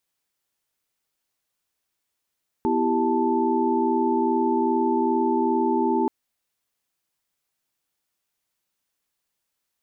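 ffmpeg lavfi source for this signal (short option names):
-f lavfi -i "aevalsrc='0.0596*(sin(2*PI*246.94*t)+sin(2*PI*329.63*t)+sin(2*PI*392*t)+sin(2*PI*880*t))':d=3.43:s=44100"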